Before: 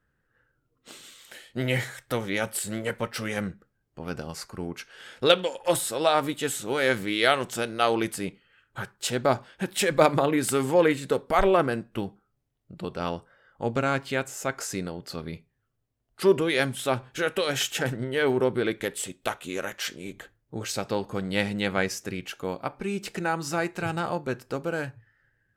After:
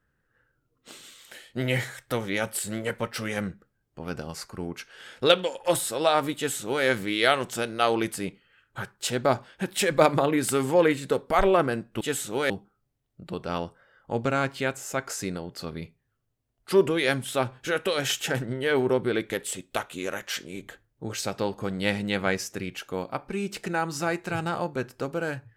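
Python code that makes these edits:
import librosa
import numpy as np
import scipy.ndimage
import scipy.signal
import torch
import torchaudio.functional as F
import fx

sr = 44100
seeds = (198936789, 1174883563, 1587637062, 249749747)

y = fx.edit(x, sr, fx.duplicate(start_s=6.36, length_s=0.49, to_s=12.01), tone=tone)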